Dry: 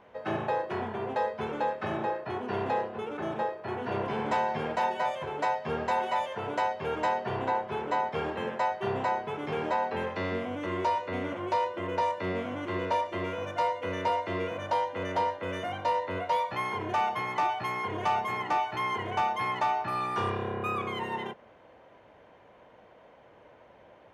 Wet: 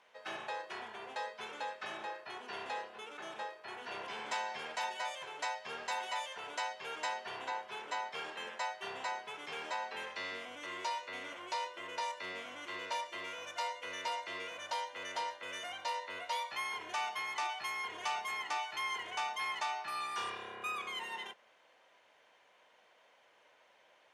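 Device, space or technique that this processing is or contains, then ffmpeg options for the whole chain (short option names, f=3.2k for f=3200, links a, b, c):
piezo pickup straight into a mixer: -af "lowpass=8.5k,aderivative,volume=7.5dB"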